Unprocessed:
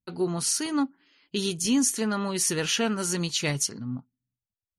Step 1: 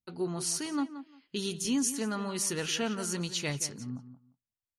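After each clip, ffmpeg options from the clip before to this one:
ffmpeg -i in.wav -filter_complex "[0:a]asplit=2[link_01][link_02];[link_02]adelay=175,lowpass=frequency=3100:poles=1,volume=-12dB,asplit=2[link_03][link_04];[link_04]adelay=175,lowpass=frequency=3100:poles=1,volume=0.19[link_05];[link_01][link_03][link_05]amix=inputs=3:normalize=0,volume=-6dB" out.wav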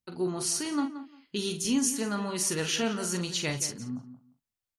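ffmpeg -i in.wav -filter_complex "[0:a]asplit=2[link_01][link_02];[link_02]adelay=44,volume=-8dB[link_03];[link_01][link_03]amix=inputs=2:normalize=0,volume=2dB" out.wav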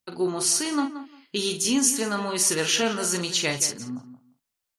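ffmpeg -i in.wav -af "bass=frequency=250:gain=-8,treble=frequency=4000:gain=1,volume=6.5dB" out.wav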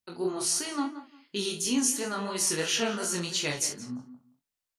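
ffmpeg -i in.wav -af "flanger=delay=20:depth=4.8:speed=2.9,volume=-2dB" out.wav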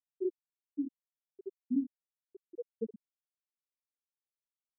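ffmpeg -i in.wav -af "afftfilt=real='re*gte(hypot(re,im),0.316)':imag='im*gte(hypot(re,im),0.316)':win_size=1024:overlap=0.75,volume=-3dB" out.wav

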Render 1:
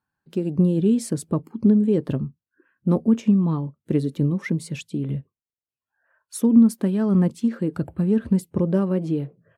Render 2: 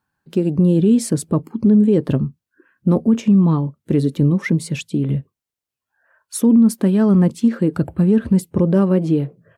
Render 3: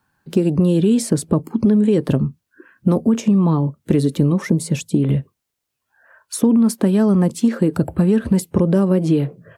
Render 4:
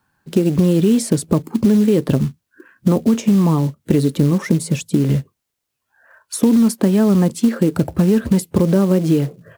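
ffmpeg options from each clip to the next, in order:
ffmpeg -i in.wav -af "alimiter=limit=-13.5dB:level=0:latency=1:release=13,volume=7dB" out.wav
ffmpeg -i in.wav -filter_complex "[0:a]acrossover=split=470|950|5400[link_01][link_02][link_03][link_04];[link_01]acompressor=threshold=-24dB:ratio=4[link_05];[link_02]acompressor=threshold=-33dB:ratio=4[link_06];[link_03]acompressor=threshold=-46dB:ratio=4[link_07];[link_04]acompressor=threshold=-37dB:ratio=4[link_08];[link_05][link_06][link_07][link_08]amix=inputs=4:normalize=0,volume=8.5dB" out.wav
ffmpeg -i in.wav -af "acrusher=bits=6:mode=log:mix=0:aa=0.000001,volume=1dB" out.wav

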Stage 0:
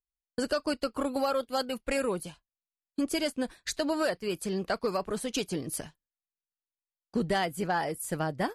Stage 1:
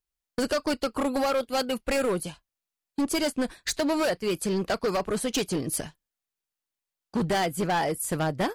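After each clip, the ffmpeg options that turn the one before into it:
ffmpeg -i in.wav -af "asoftclip=type=hard:threshold=-27.5dB,volume=6dB" out.wav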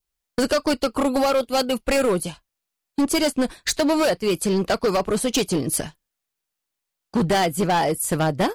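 ffmpeg -i in.wav -af "adynamicequalizer=threshold=0.00398:dfrequency=1700:dqfactor=2.5:tfrequency=1700:tqfactor=2.5:attack=5:release=100:ratio=0.375:range=2.5:mode=cutabove:tftype=bell,volume=6dB" out.wav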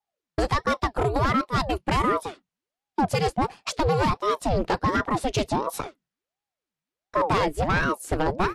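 ffmpeg -i in.wav -af "aemphasis=mode=reproduction:type=50fm,aeval=exprs='val(0)*sin(2*PI*490*n/s+490*0.7/1.4*sin(2*PI*1.4*n/s))':channel_layout=same" out.wav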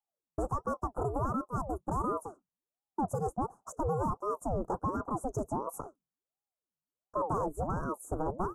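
ffmpeg -i in.wav -af "asuperstop=centerf=3000:order=12:qfactor=0.57,volume=-9dB" out.wav

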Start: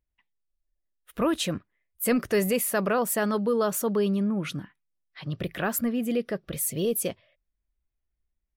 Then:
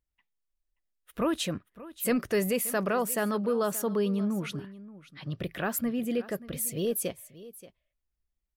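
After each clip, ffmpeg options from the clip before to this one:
ffmpeg -i in.wav -af "aecho=1:1:579:0.133,volume=-3dB" out.wav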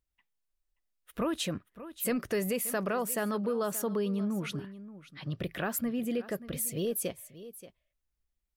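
ffmpeg -i in.wav -af "acompressor=threshold=-30dB:ratio=2" out.wav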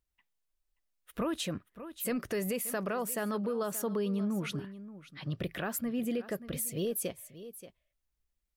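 ffmpeg -i in.wav -af "alimiter=level_in=1dB:limit=-24dB:level=0:latency=1:release=224,volume=-1dB" out.wav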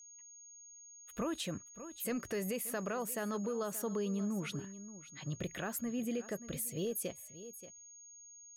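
ffmpeg -i in.wav -af "aeval=exprs='val(0)+0.00355*sin(2*PI*6600*n/s)':channel_layout=same,volume=-4dB" out.wav

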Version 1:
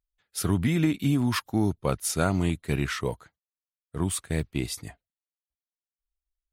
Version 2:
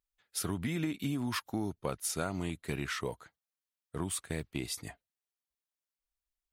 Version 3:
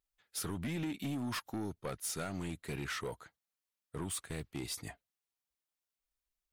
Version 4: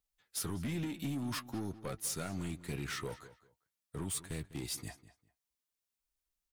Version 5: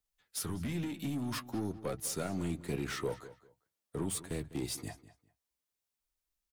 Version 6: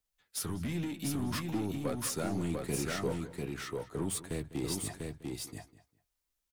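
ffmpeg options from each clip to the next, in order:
ffmpeg -i in.wav -af "lowshelf=frequency=180:gain=-7.5,acompressor=threshold=-34dB:ratio=2.5" out.wav
ffmpeg -i in.wav -af "asoftclip=type=tanh:threshold=-32.5dB" out.wav
ffmpeg -i in.wav -filter_complex "[0:a]acrossover=split=300|3700[link_01][link_02][link_03];[link_02]flanger=delay=9:depth=6.6:regen=31:speed=0.51:shape=triangular[link_04];[link_03]acrusher=bits=3:mode=log:mix=0:aa=0.000001[link_05];[link_01][link_04][link_05]amix=inputs=3:normalize=0,asplit=2[link_06][link_07];[link_07]adelay=200,lowpass=frequency=4800:poles=1,volume=-16dB,asplit=2[link_08][link_09];[link_09]adelay=200,lowpass=frequency=4800:poles=1,volume=0.22[link_10];[link_06][link_08][link_10]amix=inputs=3:normalize=0,volume=1.5dB" out.wav
ffmpeg -i in.wav -filter_complex "[0:a]acrossover=split=240|800|3700[link_01][link_02][link_03][link_04];[link_01]asplit=2[link_05][link_06];[link_06]adelay=47,volume=-7dB[link_07];[link_05][link_07]amix=inputs=2:normalize=0[link_08];[link_02]dynaudnorm=framelen=350:gausssize=9:maxgain=8dB[link_09];[link_08][link_09][link_03][link_04]amix=inputs=4:normalize=0" out.wav
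ffmpeg -i in.wav -af "aecho=1:1:695:0.668,volume=1dB" out.wav

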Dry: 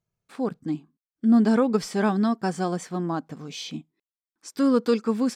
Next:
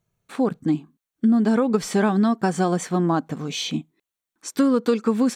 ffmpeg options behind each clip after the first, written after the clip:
ffmpeg -i in.wav -af "bandreject=frequency=5000:width=6.2,acompressor=threshold=-24dB:ratio=6,volume=8.5dB" out.wav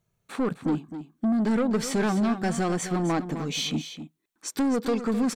ffmpeg -i in.wav -af "asoftclip=type=tanh:threshold=-20.5dB,aecho=1:1:259:0.282" out.wav

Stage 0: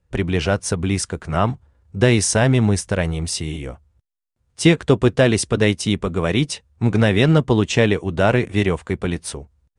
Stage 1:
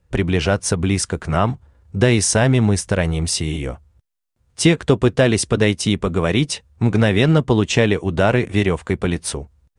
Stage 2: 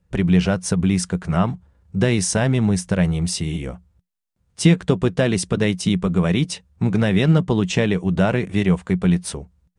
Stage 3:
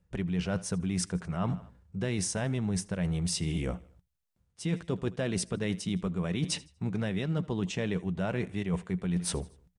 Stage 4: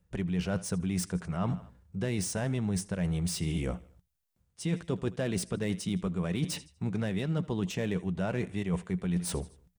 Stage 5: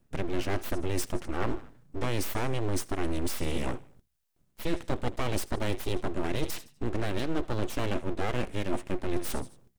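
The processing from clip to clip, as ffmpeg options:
ffmpeg -i in.wav -af "acompressor=threshold=-24dB:ratio=1.5,volume=5dB" out.wav
ffmpeg -i in.wav -af "equalizer=frequency=180:width=5.9:gain=14.5,volume=-4.5dB" out.wav
ffmpeg -i in.wav -af "aecho=1:1:80|160|240:0.0708|0.0319|0.0143,areverse,acompressor=threshold=-26dB:ratio=10,areverse,volume=-1.5dB" out.wav
ffmpeg -i in.wav -filter_complex "[0:a]acrossover=split=1100[link_01][link_02];[link_02]asoftclip=type=tanh:threshold=-34dB[link_03];[link_01][link_03]amix=inputs=2:normalize=0,crystalizer=i=0.5:c=0" out.wav
ffmpeg -i in.wav -af "aeval=exprs='abs(val(0))':channel_layout=same,volume=4dB" out.wav

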